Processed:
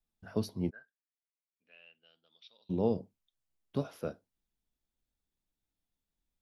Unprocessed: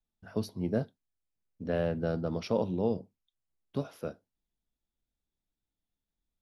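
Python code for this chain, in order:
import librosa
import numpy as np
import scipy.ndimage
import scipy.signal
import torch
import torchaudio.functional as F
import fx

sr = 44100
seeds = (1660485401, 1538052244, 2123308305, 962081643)

y = fx.bandpass_q(x, sr, hz=fx.line((0.69, 1500.0), (2.69, 4100.0)), q=17.0, at=(0.69, 2.69), fade=0.02)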